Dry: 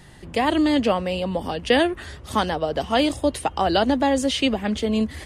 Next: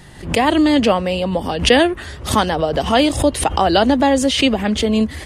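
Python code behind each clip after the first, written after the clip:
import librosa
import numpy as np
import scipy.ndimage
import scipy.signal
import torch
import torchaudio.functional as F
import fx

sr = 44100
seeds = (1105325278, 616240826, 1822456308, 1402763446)

y = fx.pre_swell(x, sr, db_per_s=120.0)
y = y * librosa.db_to_amplitude(5.5)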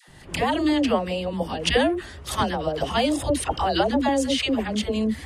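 y = fx.dispersion(x, sr, late='lows', ms=85.0, hz=610.0)
y = y * librosa.db_to_amplitude(-7.5)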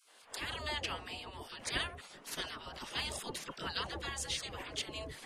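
y = fx.spec_gate(x, sr, threshold_db=-15, keep='weak')
y = y * librosa.db_to_amplitude(-6.5)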